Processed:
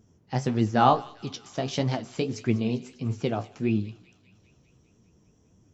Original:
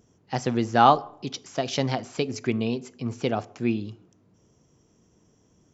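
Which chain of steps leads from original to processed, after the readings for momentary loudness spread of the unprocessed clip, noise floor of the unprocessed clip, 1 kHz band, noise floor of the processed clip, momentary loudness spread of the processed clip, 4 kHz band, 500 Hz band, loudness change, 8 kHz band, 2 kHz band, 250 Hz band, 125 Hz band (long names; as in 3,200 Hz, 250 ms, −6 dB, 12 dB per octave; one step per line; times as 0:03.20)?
15 LU, −64 dBFS, −3.5 dB, −63 dBFS, 12 LU, −3.5 dB, −2.5 dB, −1.5 dB, can't be measured, −3.5 dB, 0.0 dB, +3.0 dB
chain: low-shelf EQ 210 Hz +9 dB
flanger 1.6 Hz, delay 8.6 ms, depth 9.4 ms, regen +41%
delay with a high-pass on its return 199 ms, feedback 67%, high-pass 2,100 Hz, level −16.5 dB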